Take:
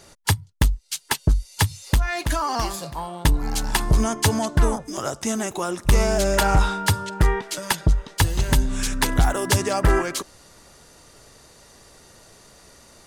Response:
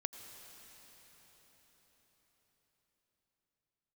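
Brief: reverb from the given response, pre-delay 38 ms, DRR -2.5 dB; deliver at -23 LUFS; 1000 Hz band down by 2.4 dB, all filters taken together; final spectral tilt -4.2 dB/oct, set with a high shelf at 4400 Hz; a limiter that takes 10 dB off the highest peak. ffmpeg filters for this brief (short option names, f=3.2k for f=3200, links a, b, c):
-filter_complex "[0:a]equalizer=f=1k:t=o:g=-3.5,highshelf=f=4.4k:g=5,alimiter=limit=-16dB:level=0:latency=1,asplit=2[a][b];[1:a]atrim=start_sample=2205,adelay=38[c];[b][c]afir=irnorm=-1:irlink=0,volume=3.5dB[d];[a][d]amix=inputs=2:normalize=0,volume=-0.5dB"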